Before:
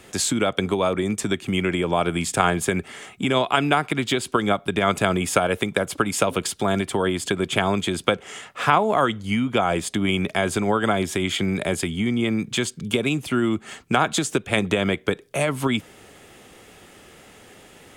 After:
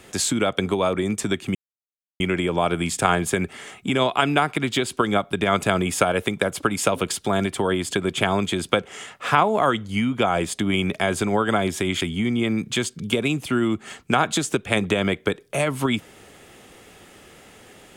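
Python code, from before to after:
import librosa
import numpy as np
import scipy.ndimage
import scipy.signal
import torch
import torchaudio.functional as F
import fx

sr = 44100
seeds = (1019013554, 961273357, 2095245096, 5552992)

y = fx.edit(x, sr, fx.insert_silence(at_s=1.55, length_s=0.65),
    fx.cut(start_s=11.36, length_s=0.46), tone=tone)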